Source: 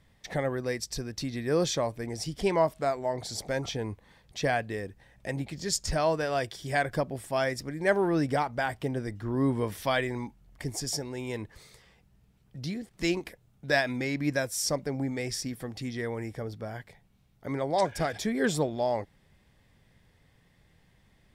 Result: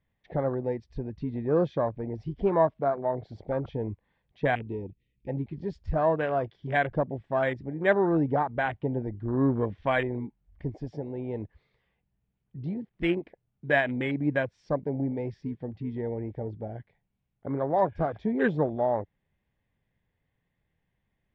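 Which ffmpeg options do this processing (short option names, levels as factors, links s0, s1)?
-filter_complex "[0:a]asettb=1/sr,asplit=3[s0][s1][s2];[s0]atrim=end=4.554[s3];[s1]atrim=start=4.55:end=5.28,asetpts=PTS-STARTPTS,afade=t=in:d=0.004:c=qsin,afade=t=out:st=0.726:d=0.004:c=qsin,asuperstop=centerf=1000:order=12:qfactor=0.57[s4];[s2]atrim=start=5.276[s5];[s3][s4]acrossfade=d=0.004:c1=hsin:c2=qsin[s6];[s6][s5]acrossfade=d=0.004:c1=qsin:c2=hsin,lowpass=f=3200:w=0.5412,lowpass=f=3200:w=1.3066,bandreject=f=1300:w=15,afwtdn=0.02,volume=1.26"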